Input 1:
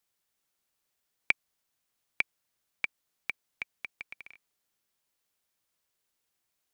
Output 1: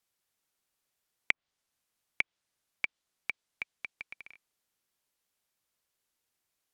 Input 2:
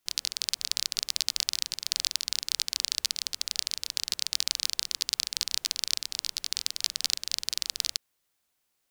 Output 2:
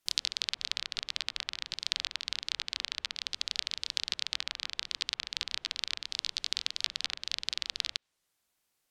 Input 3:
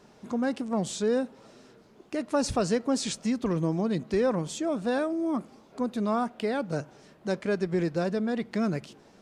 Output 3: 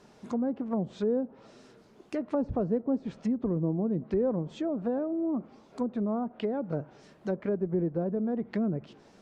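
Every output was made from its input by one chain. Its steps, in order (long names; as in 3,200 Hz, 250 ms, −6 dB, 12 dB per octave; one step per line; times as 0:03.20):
treble cut that deepens with the level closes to 590 Hz, closed at −24.5 dBFS
dynamic equaliser 3,500 Hz, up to +4 dB, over −49 dBFS, Q 1.9
level −1 dB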